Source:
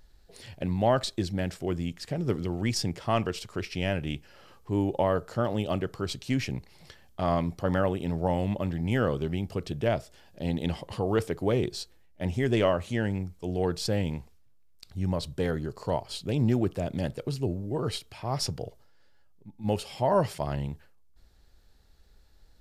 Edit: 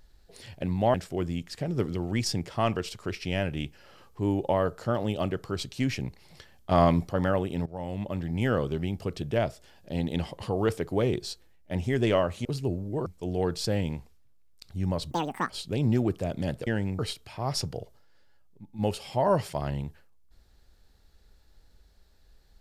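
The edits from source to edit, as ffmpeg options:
ffmpeg -i in.wav -filter_complex "[0:a]asplit=11[link_01][link_02][link_03][link_04][link_05][link_06][link_07][link_08][link_09][link_10][link_11];[link_01]atrim=end=0.942[link_12];[link_02]atrim=start=1.438:end=7.212[link_13];[link_03]atrim=start=7.208:end=7.582,asetpts=PTS-STARTPTS,volume=5.5dB[link_14];[link_04]atrim=start=7.578:end=8.16,asetpts=PTS-STARTPTS,afade=type=out:start_time=0.578:duration=0.004:curve=hsin:silence=0.133352[link_15];[link_05]atrim=start=8.16:end=12.952,asetpts=PTS-STARTPTS,afade=type=in:duration=0.91:curve=qsin:silence=0.133352[link_16];[link_06]atrim=start=17.228:end=17.842[link_17];[link_07]atrim=start=13.268:end=15.324[link_18];[link_08]atrim=start=15.32:end=16.06,asetpts=PTS-STARTPTS,asetrate=84231,aresample=44100[link_19];[link_09]atrim=start=16.056:end=17.232[link_20];[link_10]atrim=start=12.948:end=13.272[link_21];[link_11]atrim=start=17.838[link_22];[link_12][link_13]acrossfade=duration=0.004:curve1=hsin:curve2=hsin[link_23];[link_23][link_14]acrossfade=duration=0.004:curve1=hsin:curve2=hsin[link_24];[link_15][link_16]concat=n=2:v=0:a=1[link_25];[link_24][link_25]acrossfade=duration=0.004:curve1=hsin:curve2=hsin[link_26];[link_26][link_17]acrossfade=duration=0.004:curve1=hsin:curve2=hsin[link_27];[link_27][link_18]acrossfade=duration=0.004:curve1=hsin:curve2=hsin[link_28];[link_28][link_19]acrossfade=duration=0.004:curve1=hsin:curve2=hsin[link_29];[link_29][link_20]acrossfade=duration=0.004:curve1=hsin:curve2=hsin[link_30];[link_30][link_21]acrossfade=duration=0.004:curve1=hsin:curve2=hsin[link_31];[link_31][link_22]acrossfade=duration=0.004:curve1=hsin:curve2=hsin" out.wav

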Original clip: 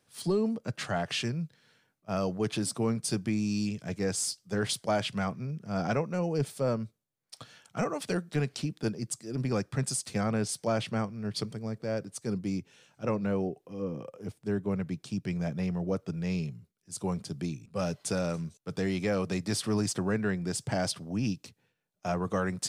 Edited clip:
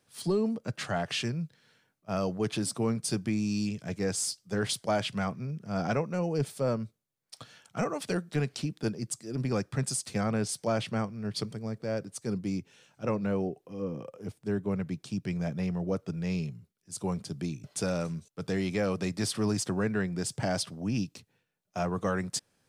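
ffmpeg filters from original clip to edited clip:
ffmpeg -i in.wav -filter_complex "[0:a]asplit=2[link_01][link_02];[link_01]atrim=end=17.642[link_03];[link_02]atrim=start=17.928[link_04];[link_03][link_04]acrossfade=duration=0.004:curve1=hsin:curve2=hsin" out.wav

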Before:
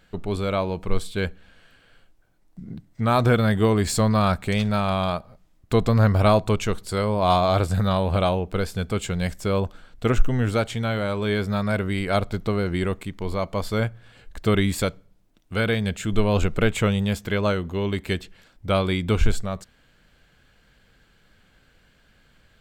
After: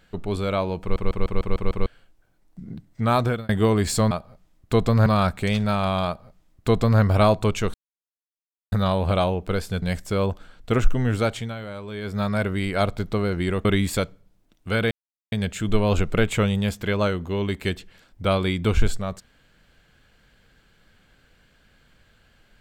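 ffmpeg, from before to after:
ffmpeg -i in.wav -filter_complex "[0:a]asplit=18[link_01][link_02][link_03][link_04][link_05][link_06][link_07][link_08][link_09][link_10][link_11][link_12][link_13][link_14][link_15][link_16][link_17][link_18];[link_01]atrim=end=0.962[link_19];[link_02]atrim=start=0.808:end=0.962[link_20];[link_03]atrim=start=0.808:end=0.962[link_21];[link_04]atrim=start=0.808:end=0.962[link_22];[link_05]atrim=start=0.808:end=0.962[link_23];[link_06]atrim=start=0.808:end=0.962[link_24];[link_07]atrim=start=0.808:end=0.962[link_25];[link_08]atrim=start=1.858:end=3.49,asetpts=PTS-STARTPTS,afade=type=out:start_time=1.282:duration=0.35[link_26];[link_09]atrim=start=3.49:end=4.112,asetpts=PTS-STARTPTS,afade=type=in:duration=0.004:curve=hsin[link_27];[link_10]atrim=start=5.108:end=6.062[link_28];[link_11]atrim=start=4.108:end=6.79,asetpts=PTS-STARTPTS,afade=type=out:start_time=2.678:duration=0.004:curve=hsin[link_29];[link_12]atrim=start=6.79:end=7.77,asetpts=PTS-STARTPTS,volume=0[link_30];[link_13]atrim=start=7.77:end=8.872,asetpts=PTS-STARTPTS,afade=type=in:duration=0.004:curve=hsin[link_31];[link_14]atrim=start=9.158:end=10.89,asetpts=PTS-STARTPTS,afade=type=out:start_time=1.532:duration=0.2:silence=0.334965[link_32];[link_15]atrim=start=10.89:end=11.35,asetpts=PTS-STARTPTS,volume=-9.5dB[link_33];[link_16]atrim=start=11.35:end=12.992,asetpts=PTS-STARTPTS,afade=type=in:duration=0.2:silence=0.334965[link_34];[link_17]atrim=start=14.498:end=15.76,asetpts=PTS-STARTPTS,afade=type=out:start_time=1.258:duration=0.004:curve=hsin,apad=pad_dur=0.41[link_35];[link_18]atrim=start=15.76,asetpts=PTS-STARTPTS,afade=type=in:duration=0.004:curve=hsin[link_36];[link_19][link_20]acrossfade=duration=0.004:curve1=hsin:curve2=hsin[link_37];[link_37][link_21]acrossfade=duration=0.004:curve1=hsin:curve2=hsin[link_38];[link_38][link_22]acrossfade=duration=0.004:curve1=hsin:curve2=hsin[link_39];[link_39][link_23]acrossfade=duration=0.004:curve1=hsin:curve2=hsin[link_40];[link_40][link_24]acrossfade=duration=0.004:curve1=hsin:curve2=hsin[link_41];[link_41][link_25]acrossfade=duration=0.004:curve1=hsin:curve2=hsin[link_42];[link_26][link_27]concat=n=2:v=0:a=1[link_43];[link_42][link_43]acrossfade=duration=0.004:curve1=hsin:curve2=hsin[link_44];[link_44][link_28]acrossfade=duration=0.004:curve1=hsin:curve2=hsin[link_45];[link_29][link_30][link_31]concat=n=3:v=0:a=1[link_46];[link_45][link_46]acrossfade=duration=0.004:curve1=hsin:curve2=hsin[link_47];[link_32][link_33][link_34]concat=n=3:v=0:a=1[link_48];[link_47][link_48]acrossfade=duration=0.004:curve1=hsin:curve2=hsin[link_49];[link_35][link_36]concat=n=2:v=0:a=1[link_50];[link_49][link_50]acrossfade=duration=0.004:curve1=hsin:curve2=hsin" out.wav

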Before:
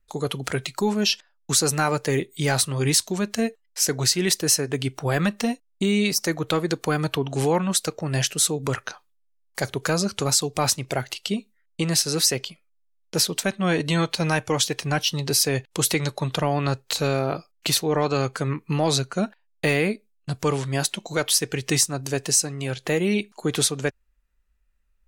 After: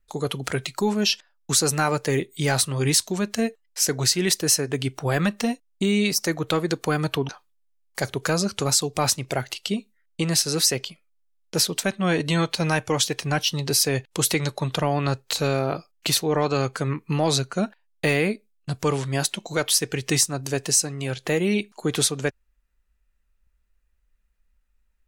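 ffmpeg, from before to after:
ffmpeg -i in.wav -filter_complex "[0:a]asplit=2[link_01][link_02];[link_01]atrim=end=7.292[link_03];[link_02]atrim=start=8.888[link_04];[link_03][link_04]acrossfade=duration=0.004:curve1=hsin:curve2=hsin" out.wav

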